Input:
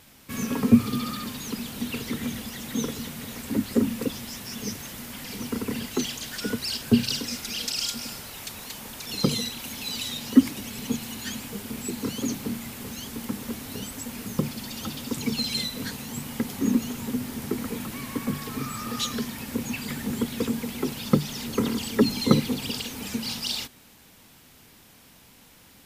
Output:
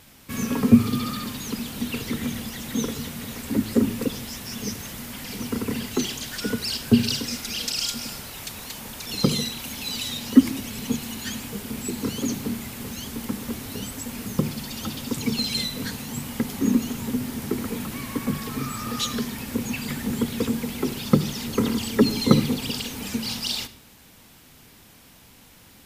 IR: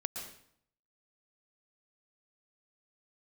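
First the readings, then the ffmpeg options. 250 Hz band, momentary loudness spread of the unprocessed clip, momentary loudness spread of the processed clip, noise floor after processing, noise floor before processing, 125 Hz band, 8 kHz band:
+2.5 dB, 12 LU, 12 LU, −51 dBFS, −53 dBFS, +3.5 dB, +2.0 dB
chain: -filter_complex "[0:a]asplit=2[link_01][link_02];[1:a]atrim=start_sample=2205,asetrate=74970,aresample=44100,lowshelf=frequency=170:gain=10.5[link_03];[link_02][link_03]afir=irnorm=-1:irlink=0,volume=-7dB[link_04];[link_01][link_04]amix=inputs=2:normalize=0"

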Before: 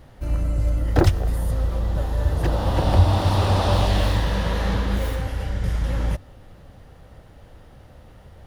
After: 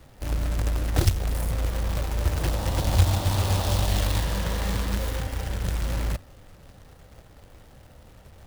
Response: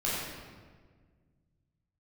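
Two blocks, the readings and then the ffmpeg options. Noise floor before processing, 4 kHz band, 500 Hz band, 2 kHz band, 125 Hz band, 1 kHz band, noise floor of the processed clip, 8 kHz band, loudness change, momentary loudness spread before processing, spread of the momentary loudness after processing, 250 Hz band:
−47 dBFS, −1.5 dB, −6.5 dB, −2.5 dB, −4.0 dB, −6.5 dB, −51 dBFS, +5.5 dB, −4.0 dB, 8 LU, 7 LU, −6.0 dB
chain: -filter_complex "[0:a]acrusher=bits=2:mode=log:mix=0:aa=0.000001,acrossover=split=170|3000[link_01][link_02][link_03];[link_02]acompressor=threshold=-27dB:ratio=2.5[link_04];[link_01][link_04][link_03]amix=inputs=3:normalize=0,volume=-4dB"

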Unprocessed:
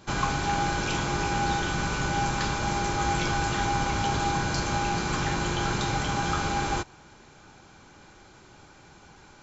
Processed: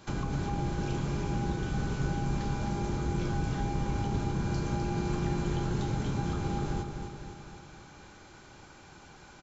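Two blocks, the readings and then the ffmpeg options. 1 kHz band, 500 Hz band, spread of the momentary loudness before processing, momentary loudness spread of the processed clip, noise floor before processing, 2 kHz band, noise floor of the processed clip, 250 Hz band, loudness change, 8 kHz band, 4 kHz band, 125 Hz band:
−11.5 dB, −4.0 dB, 1 LU, 20 LU, −53 dBFS, −13.5 dB, −53 dBFS, −1.0 dB, −5.5 dB, can't be measured, −13.5 dB, 0.0 dB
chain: -filter_complex "[0:a]acrossover=split=480[link_01][link_02];[link_02]acompressor=threshold=-41dB:ratio=10[link_03];[link_01][link_03]amix=inputs=2:normalize=0,aecho=1:1:255|510|765|1020|1275|1530|1785:0.473|0.265|0.148|0.0831|0.0465|0.0261|0.0146,volume=-1.5dB"

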